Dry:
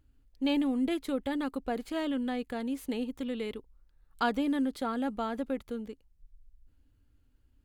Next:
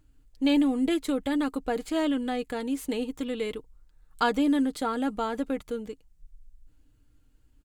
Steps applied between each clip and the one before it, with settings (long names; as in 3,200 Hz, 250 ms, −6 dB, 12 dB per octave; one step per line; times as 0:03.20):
parametric band 7,600 Hz +6 dB 0.66 octaves
comb filter 6.5 ms, depth 39%
level +4 dB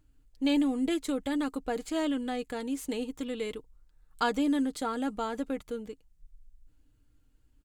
dynamic equaliser 6,800 Hz, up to +5 dB, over −55 dBFS, Q 1.4
level −3.5 dB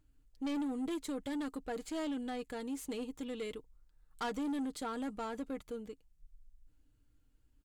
soft clipping −28 dBFS, distortion −12 dB
level −4.5 dB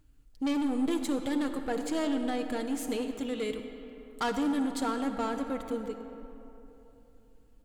comb and all-pass reverb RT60 3.3 s, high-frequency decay 0.5×, pre-delay 25 ms, DRR 6.5 dB
level +7 dB